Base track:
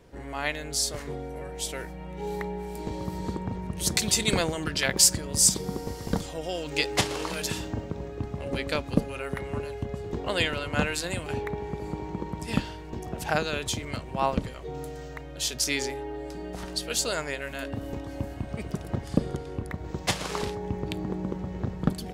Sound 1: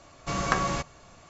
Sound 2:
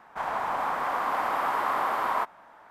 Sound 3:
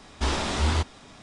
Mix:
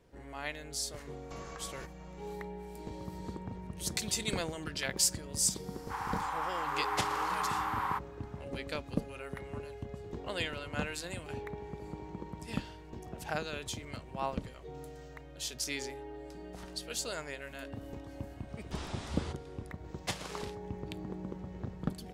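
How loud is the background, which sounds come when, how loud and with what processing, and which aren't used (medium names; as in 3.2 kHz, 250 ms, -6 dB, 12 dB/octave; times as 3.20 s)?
base track -9.5 dB
1.04 s: add 1 -9 dB + compression, threshold -35 dBFS
5.74 s: add 2 -6.5 dB + brick-wall FIR high-pass 740 Hz
18.50 s: add 3 -16.5 dB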